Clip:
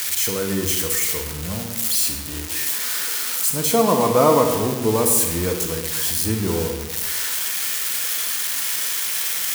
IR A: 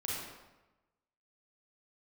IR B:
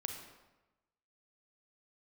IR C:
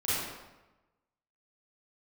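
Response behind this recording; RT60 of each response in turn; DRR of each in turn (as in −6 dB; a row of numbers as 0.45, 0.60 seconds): B; 1.1, 1.1, 1.1 seconds; −5.5, 4.0, −11.5 decibels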